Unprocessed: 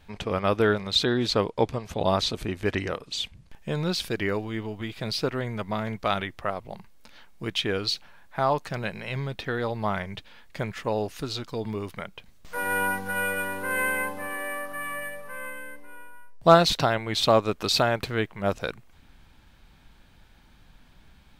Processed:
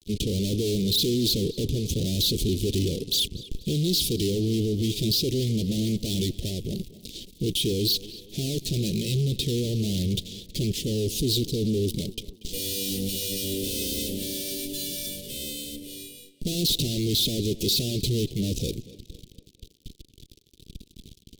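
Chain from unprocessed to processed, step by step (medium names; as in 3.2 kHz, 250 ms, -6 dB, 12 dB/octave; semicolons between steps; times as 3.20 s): fuzz box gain 42 dB, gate -49 dBFS; elliptic band-stop 400–3400 Hz, stop band 80 dB; tape echo 237 ms, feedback 50%, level -16.5 dB, low-pass 4.6 kHz; trim -8 dB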